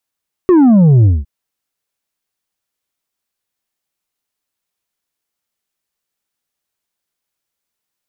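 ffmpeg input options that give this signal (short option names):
-f lavfi -i "aevalsrc='0.531*clip((0.76-t)/0.2,0,1)*tanh(1.78*sin(2*PI*380*0.76/log(65/380)*(exp(log(65/380)*t/0.76)-1)))/tanh(1.78)':d=0.76:s=44100"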